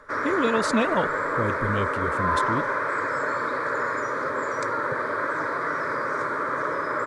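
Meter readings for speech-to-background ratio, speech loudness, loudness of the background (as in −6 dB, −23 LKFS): −2.0 dB, −28.0 LKFS, −26.0 LKFS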